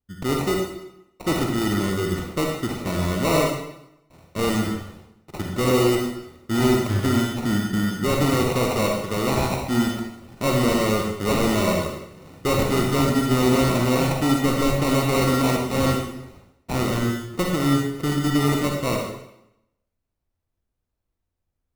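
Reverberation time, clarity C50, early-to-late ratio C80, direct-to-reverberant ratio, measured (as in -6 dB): 0.85 s, 1.5 dB, 4.5 dB, 0.0 dB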